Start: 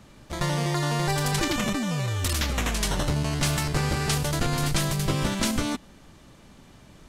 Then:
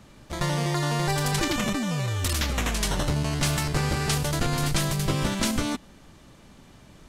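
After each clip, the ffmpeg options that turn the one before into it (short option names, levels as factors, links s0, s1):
-af anull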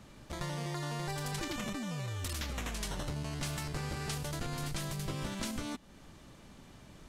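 -af "acompressor=threshold=0.0126:ratio=2,volume=0.668"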